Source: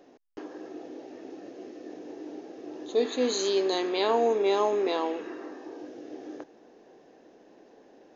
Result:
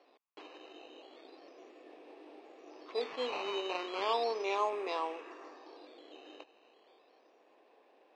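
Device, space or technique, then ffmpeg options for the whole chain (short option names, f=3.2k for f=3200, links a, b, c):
circuit-bent sampling toy: -af "acrusher=samples=9:mix=1:aa=0.000001:lfo=1:lforange=9:lforate=0.35,highpass=540,equalizer=f=1.1k:t=q:w=4:g=7,equalizer=f=1.6k:t=q:w=4:g=-4,equalizer=f=2.5k:t=q:w=4:g=7,lowpass=f=4.7k:w=0.5412,lowpass=f=4.7k:w=1.3066,volume=-6dB"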